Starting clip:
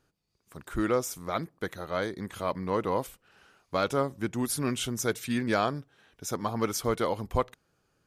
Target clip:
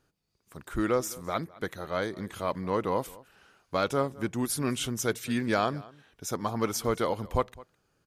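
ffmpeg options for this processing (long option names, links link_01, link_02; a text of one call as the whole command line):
ffmpeg -i in.wav -filter_complex "[0:a]asplit=2[link_01][link_02];[link_02]adelay=209.9,volume=-21dB,highshelf=frequency=4000:gain=-4.72[link_03];[link_01][link_03]amix=inputs=2:normalize=0" out.wav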